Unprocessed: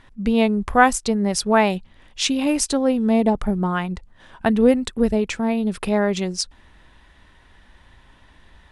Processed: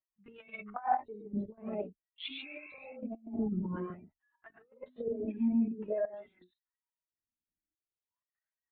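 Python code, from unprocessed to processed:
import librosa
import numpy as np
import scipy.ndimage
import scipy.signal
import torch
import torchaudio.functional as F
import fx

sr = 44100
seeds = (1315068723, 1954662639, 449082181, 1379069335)

y = fx.bin_expand(x, sr, power=2.0)
y = fx.lpc_vocoder(y, sr, seeds[0], excitation='pitch_kept', order=10)
y = fx.rev_gated(y, sr, seeds[1], gate_ms=160, shape='rising', drr_db=2.0)
y = fx.over_compress(y, sr, threshold_db=-23.0, ratio=-0.5)
y = fx.step_gate(y, sr, bpm=124, pattern='xxxxxxxx...x.x', floor_db=-12.0, edge_ms=4.5)
y = fx.spec_repair(y, sr, seeds[2], start_s=2.46, length_s=0.47, low_hz=680.0, high_hz=2700.0, source='before')
y = fx.wah_lfo(y, sr, hz=0.5, low_hz=230.0, high_hz=1600.0, q=3.1)
y = fx.comb_cascade(y, sr, direction='rising', hz=0.91)
y = y * 10.0 ** (3.0 / 20.0)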